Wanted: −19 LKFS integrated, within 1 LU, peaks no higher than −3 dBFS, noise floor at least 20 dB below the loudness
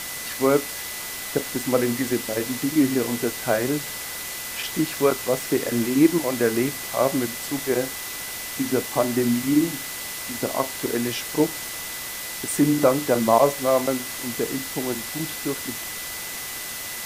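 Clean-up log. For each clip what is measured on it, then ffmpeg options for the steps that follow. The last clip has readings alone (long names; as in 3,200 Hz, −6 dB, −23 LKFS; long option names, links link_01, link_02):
interfering tone 2,000 Hz; level of the tone −39 dBFS; background noise floor −33 dBFS; target noise floor −44 dBFS; integrated loudness −24.0 LKFS; sample peak −3.5 dBFS; target loudness −19.0 LKFS
→ -af "bandreject=frequency=2000:width=30"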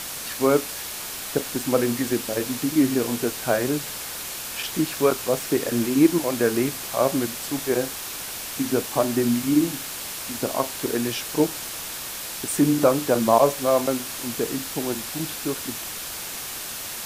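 interfering tone none found; background noise floor −34 dBFS; target noise floor −44 dBFS
→ -af "afftdn=noise_reduction=10:noise_floor=-34"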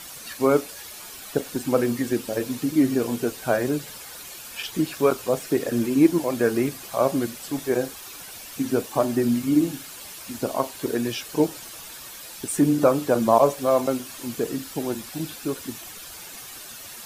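background noise floor −40 dBFS; target noise floor −44 dBFS
→ -af "afftdn=noise_reduction=6:noise_floor=-40"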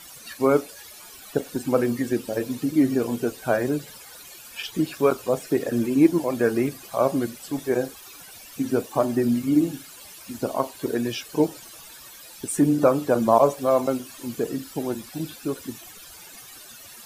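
background noise floor −45 dBFS; integrated loudness −24.0 LKFS; sample peak −4.0 dBFS; target loudness −19.0 LKFS
→ -af "volume=5dB,alimiter=limit=-3dB:level=0:latency=1"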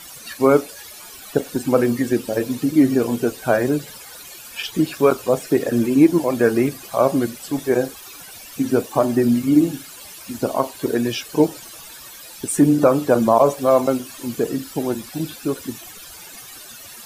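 integrated loudness −19.5 LKFS; sample peak −3.0 dBFS; background noise floor −40 dBFS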